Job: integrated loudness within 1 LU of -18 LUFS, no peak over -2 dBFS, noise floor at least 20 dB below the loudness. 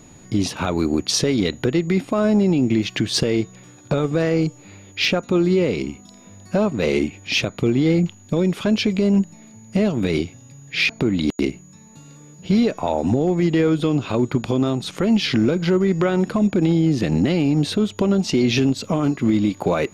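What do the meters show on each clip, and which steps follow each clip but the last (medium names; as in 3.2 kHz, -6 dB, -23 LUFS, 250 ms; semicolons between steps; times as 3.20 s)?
clipped samples 0.5%; clipping level -10.0 dBFS; steady tone 6.8 kHz; tone level -50 dBFS; loudness -20.0 LUFS; peak level -10.0 dBFS; loudness target -18.0 LUFS
-> clip repair -10 dBFS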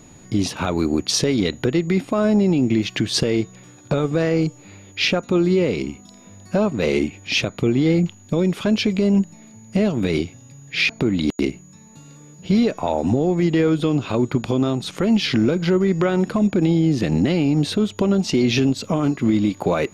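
clipped samples 0.0%; steady tone 6.8 kHz; tone level -50 dBFS
-> band-stop 6.8 kHz, Q 30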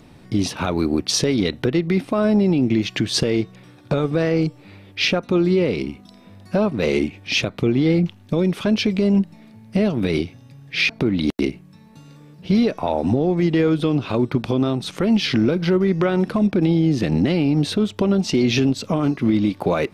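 steady tone not found; loudness -20.0 LUFS; peak level -7.0 dBFS; loudness target -18.0 LUFS
-> trim +2 dB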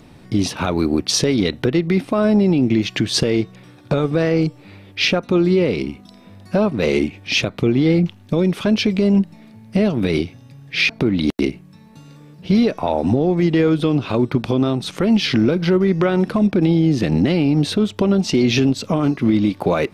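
loudness -18.0 LUFS; peak level -5.0 dBFS; noise floor -45 dBFS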